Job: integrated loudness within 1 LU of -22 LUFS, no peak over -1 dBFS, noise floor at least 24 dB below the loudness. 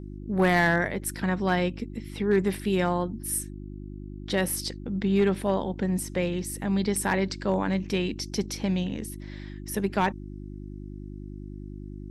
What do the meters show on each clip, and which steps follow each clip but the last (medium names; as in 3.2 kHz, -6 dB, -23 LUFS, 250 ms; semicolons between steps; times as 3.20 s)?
clipped samples 0.3%; clipping level -15.0 dBFS; hum 50 Hz; highest harmonic 350 Hz; hum level -37 dBFS; loudness -27.0 LUFS; peak level -15.0 dBFS; loudness target -22.0 LUFS
-> clip repair -15 dBFS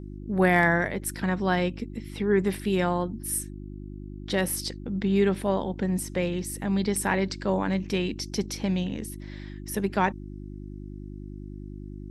clipped samples 0.0%; hum 50 Hz; highest harmonic 350 Hz; hum level -37 dBFS
-> de-hum 50 Hz, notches 7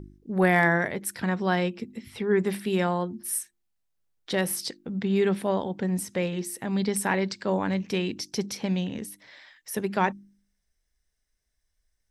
hum not found; loudness -27.0 LUFS; peak level -9.0 dBFS; loudness target -22.0 LUFS
-> trim +5 dB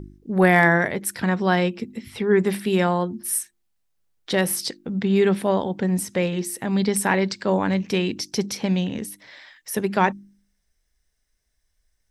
loudness -22.0 LUFS; peak level -4.0 dBFS; noise floor -72 dBFS